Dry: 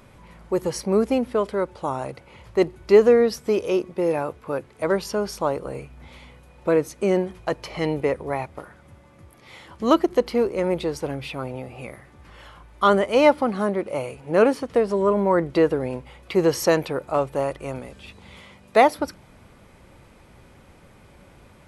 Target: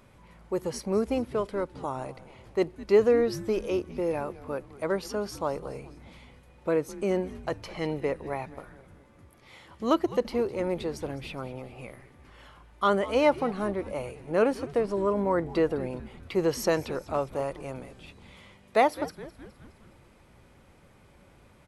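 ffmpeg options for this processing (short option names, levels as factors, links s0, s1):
-filter_complex "[0:a]asplit=6[s0][s1][s2][s3][s4][s5];[s1]adelay=208,afreqshift=-130,volume=0.141[s6];[s2]adelay=416,afreqshift=-260,volume=0.0822[s7];[s3]adelay=624,afreqshift=-390,volume=0.0473[s8];[s4]adelay=832,afreqshift=-520,volume=0.0275[s9];[s5]adelay=1040,afreqshift=-650,volume=0.016[s10];[s0][s6][s7][s8][s9][s10]amix=inputs=6:normalize=0,volume=0.473"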